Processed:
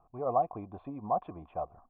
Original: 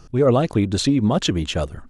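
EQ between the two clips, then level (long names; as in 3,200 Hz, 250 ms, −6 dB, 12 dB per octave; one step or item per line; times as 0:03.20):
formant resonators in series a
high-frequency loss of the air 150 metres
+3.0 dB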